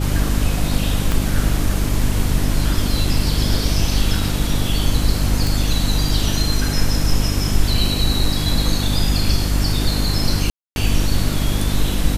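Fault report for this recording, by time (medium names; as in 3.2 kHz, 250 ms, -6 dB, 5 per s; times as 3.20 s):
hum 50 Hz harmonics 6 -21 dBFS
1.12 s: pop
5.47 s: pop
10.50–10.76 s: dropout 261 ms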